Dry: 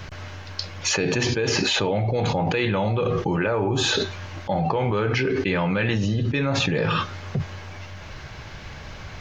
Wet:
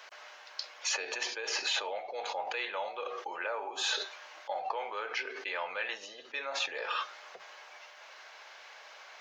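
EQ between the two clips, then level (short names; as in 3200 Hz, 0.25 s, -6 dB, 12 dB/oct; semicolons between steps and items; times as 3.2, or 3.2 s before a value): HPF 580 Hz 24 dB/oct; -8.5 dB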